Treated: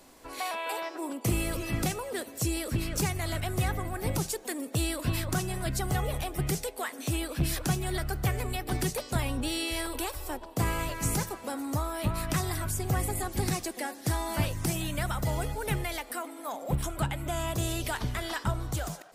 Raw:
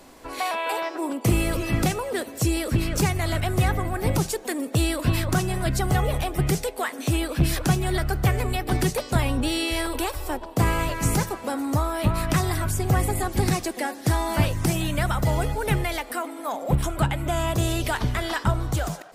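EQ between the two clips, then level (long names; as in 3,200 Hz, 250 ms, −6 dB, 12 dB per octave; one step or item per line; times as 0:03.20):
high-shelf EQ 4,300 Hz +5.5 dB
−7.5 dB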